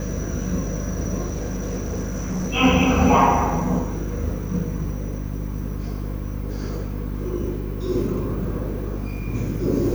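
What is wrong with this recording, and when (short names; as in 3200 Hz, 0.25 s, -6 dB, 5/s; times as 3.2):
hum 50 Hz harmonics 6 -28 dBFS
1.28–2.52 clipped -22 dBFS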